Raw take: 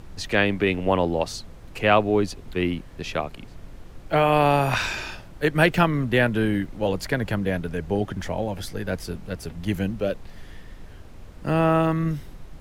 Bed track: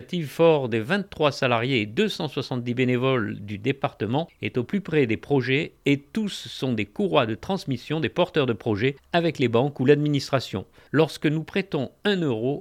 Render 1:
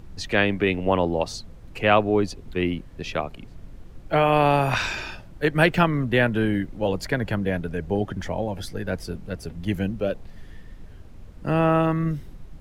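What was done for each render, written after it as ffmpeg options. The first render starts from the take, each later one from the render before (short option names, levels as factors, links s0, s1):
-af "afftdn=nr=6:nf=-43"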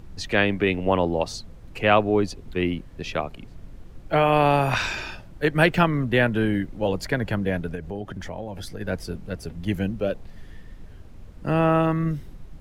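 -filter_complex "[0:a]asettb=1/sr,asplit=3[s0][s1][s2];[s0]atrim=end=7.754[s3];[s1]atrim=start=7.75:end=8.81,asetpts=PTS-STARTPTS,afade=t=in:d=0.004:c=qsin,afade=t=out:st=1.056:d=0.004:c=qsin,acompressor=threshold=0.0282:ratio=2.5:attack=3.2:release=140:knee=1:detection=peak[s4];[s2]atrim=start=8.806[s5];[s3][s4]acrossfade=d=0.004:c1=hsin:c2=qsin[s6];[s6][s5]acrossfade=d=0.004:c1=qsin:c2=hsin"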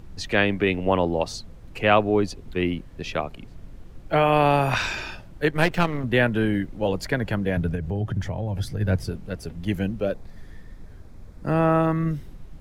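-filter_complex "[0:a]asettb=1/sr,asplit=3[s0][s1][s2];[s0]atrim=end=5.514[s3];[s1]atrim=start=5.51:end=6.04,asetpts=PTS-STARTPTS,afade=t=in:d=0.004:c=qsin,afade=t=out:st=0.526:d=0.004:c=qsin,aeval=exprs='if(lt(val(0),0),0.251*val(0),val(0))':c=same[s4];[s2]atrim=start=6.036[s5];[s3][s4]acrossfade=d=0.004:c1=hsin:c2=qsin[s6];[s6][s5]acrossfade=d=0.004:c1=qsin:c2=hsin,asettb=1/sr,asplit=3[s7][s8][s9];[s7]atrim=end=7.574[s10];[s8]atrim=start=7.57:end=9.1,asetpts=PTS-STARTPTS,afade=t=in:d=0.004:c=qsin,afade=t=out:st=1.526:d=0.004:c=qsin,equalizer=f=110:t=o:w=1.1:g=14[s11];[s9]atrim=start=9.096[s12];[s10][s11]acrossfade=d=0.004:c1=hsin:c2=qsin[s13];[s13][s12]acrossfade=d=0.004:c1=qsin:c2=hsin,asettb=1/sr,asplit=3[s14][s15][s16];[s14]atrim=end=10.054[s17];[s15]atrim=start=10.05:end=11.94,asetpts=PTS-STARTPTS,afade=t=in:d=0.004:c=qsin,afade=t=out:st=1.886:d=0.004:c=qsin,equalizer=f=2900:w=5.5:g=-10.5[s18];[s16]atrim=start=11.936[s19];[s17][s18]acrossfade=d=0.004:c1=hsin:c2=qsin[s20];[s20][s19]acrossfade=d=0.004:c1=qsin:c2=hsin"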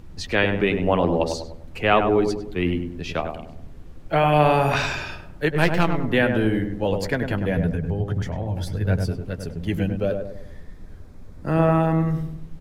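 -filter_complex "[0:a]asplit=2[s0][s1];[s1]adelay=12,volume=0.266[s2];[s0][s2]amix=inputs=2:normalize=0,asplit=2[s3][s4];[s4]adelay=100,lowpass=f=1100:p=1,volume=0.596,asplit=2[s5][s6];[s6]adelay=100,lowpass=f=1100:p=1,volume=0.47,asplit=2[s7][s8];[s8]adelay=100,lowpass=f=1100:p=1,volume=0.47,asplit=2[s9][s10];[s10]adelay=100,lowpass=f=1100:p=1,volume=0.47,asplit=2[s11][s12];[s12]adelay=100,lowpass=f=1100:p=1,volume=0.47,asplit=2[s13][s14];[s14]adelay=100,lowpass=f=1100:p=1,volume=0.47[s15];[s5][s7][s9][s11][s13][s15]amix=inputs=6:normalize=0[s16];[s3][s16]amix=inputs=2:normalize=0"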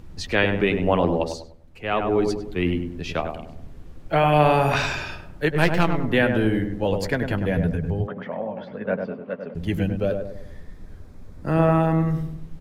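-filter_complex "[0:a]asettb=1/sr,asplit=3[s0][s1][s2];[s0]atrim=end=8.074[s3];[s1]atrim=start=8.07:end=9.55,asetpts=PTS-STARTPTS,afade=t=in:d=0.004:c=qsin,afade=t=out:st=1.476:d=0.004:c=qsin,highpass=f=210:w=0.5412,highpass=f=210:w=1.3066,equalizer=f=220:t=q:w=4:g=5,equalizer=f=330:t=q:w=4:g=-9,equalizer=f=560:t=q:w=4:g=8,equalizer=f=1100:t=q:w=4:g=7,lowpass=f=2700:w=0.5412,lowpass=f=2700:w=1.3066[s4];[s2]atrim=start=9.546[s5];[s3][s4]acrossfade=d=0.004:c1=hsin:c2=qsin[s6];[s6][s5]acrossfade=d=0.004:c1=qsin:c2=hsin,asplit=3[s7][s8][s9];[s7]atrim=end=1.55,asetpts=PTS-STARTPTS,afade=t=out:st=1.06:d=0.49:silence=0.281838[s10];[s8]atrim=start=1.55:end=1.8,asetpts=PTS-STARTPTS,volume=0.282[s11];[s9]atrim=start=1.8,asetpts=PTS-STARTPTS,afade=t=in:d=0.49:silence=0.281838[s12];[s10][s11][s12]concat=n=3:v=0:a=1"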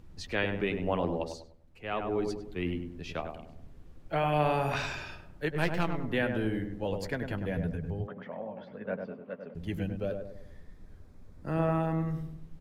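-af "volume=0.316"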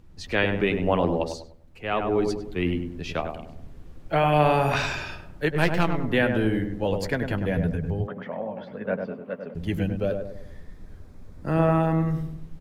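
-af "dynaudnorm=f=170:g=3:m=2.37"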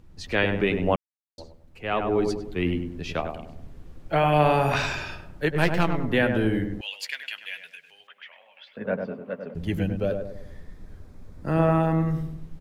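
-filter_complex "[0:a]asettb=1/sr,asplit=3[s0][s1][s2];[s0]atrim=end=6.814[s3];[s1]atrim=start=6.81:end=8.77,asetpts=PTS-STARTPTS,afade=t=in:d=0.004:c=qsin,afade=t=out:st=1.956:d=0.004:c=qsin,highpass=f=2700:t=q:w=3.2[s4];[s2]atrim=start=8.766[s5];[s3][s4]acrossfade=d=0.004:c1=hsin:c2=qsin[s6];[s6][s5]acrossfade=d=0.004:c1=qsin:c2=hsin,asplit=3[s7][s8][s9];[s7]atrim=end=0.96,asetpts=PTS-STARTPTS,afade=t=out:st=0.956:d=0.004:c=hsin[s10];[s8]atrim=start=0.96:end=1.38,asetpts=PTS-STARTPTS,volume=0[s11];[s9]atrim=start=1.38,asetpts=PTS-STARTPTS,afade=t=in:d=0.004:c=hsin[s12];[s10][s11][s12]concat=n=3:v=0:a=1"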